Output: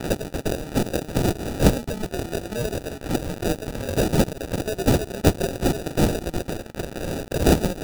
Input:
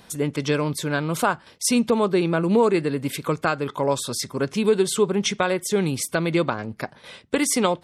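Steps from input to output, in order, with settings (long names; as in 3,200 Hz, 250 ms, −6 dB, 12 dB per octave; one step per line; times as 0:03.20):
spike at every zero crossing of −23.5 dBFS
meter weighting curve ITU-R 468
decimation without filtering 41×
dynamic equaliser 1,700 Hz, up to −7 dB, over −34 dBFS, Q 0.76
level −2.5 dB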